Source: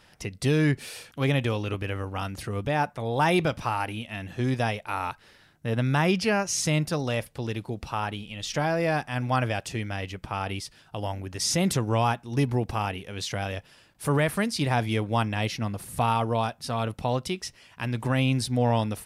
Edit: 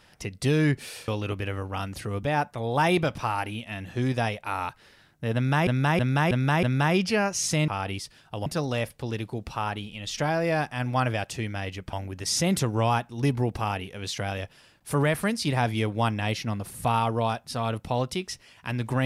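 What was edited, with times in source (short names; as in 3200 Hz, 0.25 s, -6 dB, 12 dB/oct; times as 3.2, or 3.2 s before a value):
1.08–1.5 cut
5.77–6.09 loop, 5 plays
10.29–11.07 move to 6.82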